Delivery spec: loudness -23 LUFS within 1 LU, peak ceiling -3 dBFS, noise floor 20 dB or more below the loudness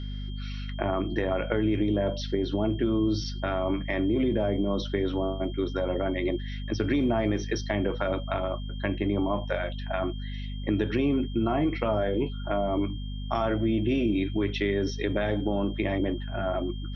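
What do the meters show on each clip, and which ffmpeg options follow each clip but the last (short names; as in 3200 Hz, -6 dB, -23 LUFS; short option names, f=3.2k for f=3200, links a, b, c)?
hum 50 Hz; harmonics up to 250 Hz; hum level -32 dBFS; steady tone 3200 Hz; tone level -47 dBFS; loudness -28.5 LUFS; peak -11.0 dBFS; loudness target -23.0 LUFS
-> -af "bandreject=f=50:t=h:w=4,bandreject=f=100:t=h:w=4,bandreject=f=150:t=h:w=4,bandreject=f=200:t=h:w=4,bandreject=f=250:t=h:w=4"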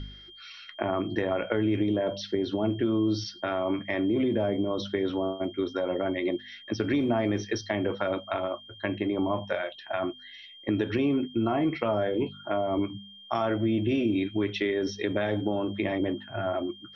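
hum none; steady tone 3200 Hz; tone level -47 dBFS
-> -af "bandreject=f=3.2k:w=30"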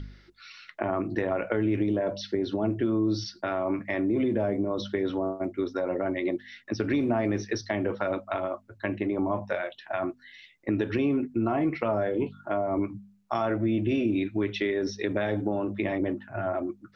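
steady tone none; loudness -29.0 LUFS; peak -11.0 dBFS; loudness target -23.0 LUFS
-> -af "volume=6dB"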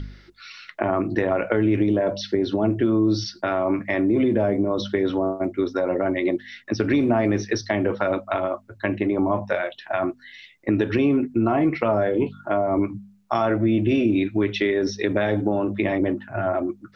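loudness -23.0 LUFS; peak -5.0 dBFS; noise floor -53 dBFS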